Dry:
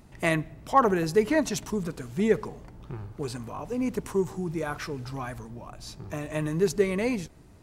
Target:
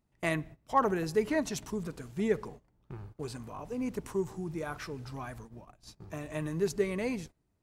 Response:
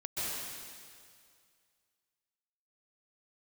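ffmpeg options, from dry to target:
-af "agate=range=-18dB:threshold=-40dB:ratio=16:detection=peak,volume=-6dB"

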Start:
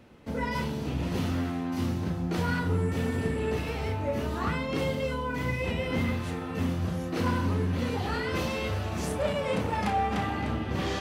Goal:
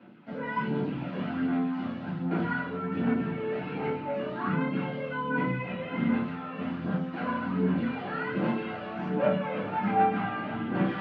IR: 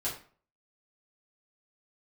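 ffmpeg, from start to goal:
-filter_complex "[0:a]acrossover=split=2600[a][b];[b]acompressor=threshold=-51dB:ratio=4:attack=1:release=60[c];[a][c]amix=inputs=2:normalize=0,aphaser=in_gain=1:out_gain=1:delay=1.8:decay=0.51:speed=1.3:type=sinusoidal,highpass=f=160:w=0.5412,highpass=f=160:w=1.3066,equalizer=f=200:t=q:w=4:g=9,equalizer=f=460:t=q:w=4:g=-4,equalizer=f=1.4k:t=q:w=4:g=5,equalizer=f=2.4k:t=q:w=4:g=3,lowpass=f=3.6k:w=0.5412,lowpass=f=3.6k:w=1.3066[d];[1:a]atrim=start_sample=2205,afade=t=out:st=0.13:d=0.01,atrim=end_sample=6174[e];[d][e]afir=irnorm=-1:irlink=0,volume=-7dB"

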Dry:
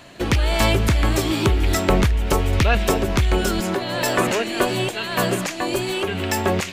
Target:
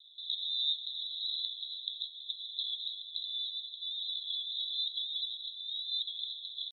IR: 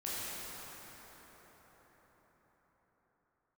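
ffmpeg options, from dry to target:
-af "asuperpass=centerf=3100:order=20:qfactor=5.3,asetrate=52444,aresample=44100,atempo=0.840896"

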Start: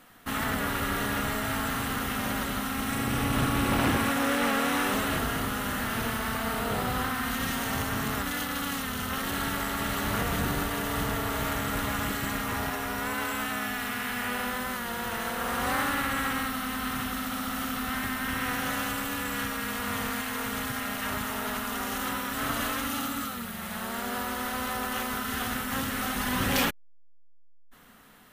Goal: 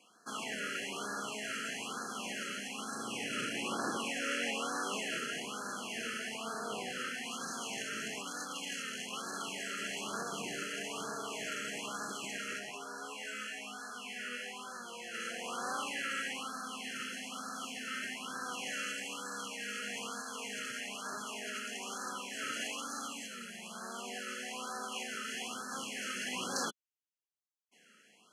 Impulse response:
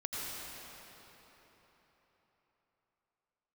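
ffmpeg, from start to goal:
-filter_complex "[0:a]asplit=3[a][b][c];[a]afade=t=out:st=12.58:d=0.02[d];[b]flanger=delay=19:depth=3.9:speed=1.2,afade=t=in:st=12.58:d=0.02,afade=t=out:st=15.13:d=0.02[e];[c]afade=t=in:st=15.13:d=0.02[f];[d][e][f]amix=inputs=3:normalize=0,asuperstop=centerf=3700:order=20:qfactor=6.1,highpass=f=220:w=0.5412,highpass=f=220:w=1.3066,equalizer=f=270:t=q:w=4:g=-9,equalizer=f=570:t=q:w=4:g=-4,equalizer=f=870:t=q:w=4:g=-5,equalizer=f=2.7k:t=q:w=4:g=7,equalizer=f=6.4k:t=q:w=4:g=7,lowpass=f=9.6k:w=0.5412,lowpass=f=9.6k:w=1.3066,afftfilt=real='re*(1-between(b*sr/1024,870*pow(2500/870,0.5+0.5*sin(2*PI*1.1*pts/sr))/1.41,870*pow(2500/870,0.5+0.5*sin(2*PI*1.1*pts/sr))*1.41))':imag='im*(1-between(b*sr/1024,870*pow(2500/870,0.5+0.5*sin(2*PI*1.1*pts/sr))/1.41,870*pow(2500/870,0.5+0.5*sin(2*PI*1.1*pts/sr))*1.41))':win_size=1024:overlap=0.75,volume=-6.5dB"

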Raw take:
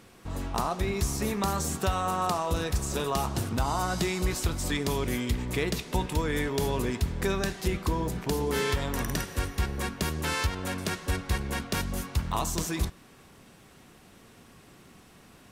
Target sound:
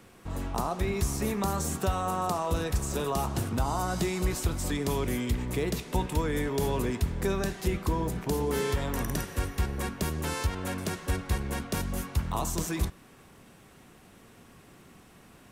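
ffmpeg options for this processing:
-filter_complex "[0:a]equalizer=f=4.6k:w=1.1:g=-3.5,acrossover=split=340|1000|3900[a][b][c][d];[c]alimiter=level_in=8.5dB:limit=-24dB:level=0:latency=1,volume=-8.5dB[e];[a][b][e][d]amix=inputs=4:normalize=0"

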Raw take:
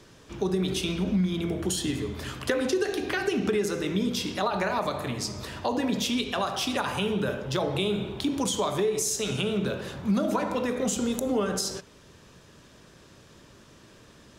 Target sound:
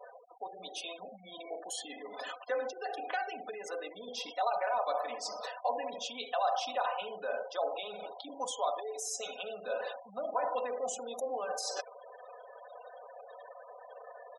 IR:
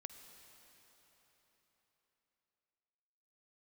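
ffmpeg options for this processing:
-af "areverse,acompressor=threshold=-40dB:ratio=12,areverse,highpass=f=660:t=q:w=4.8,aecho=1:1:4:0.7,afftfilt=real='re*gte(hypot(re,im),0.00631)':imag='im*gte(hypot(re,im),0.00631)':win_size=1024:overlap=0.75,volume=3.5dB"

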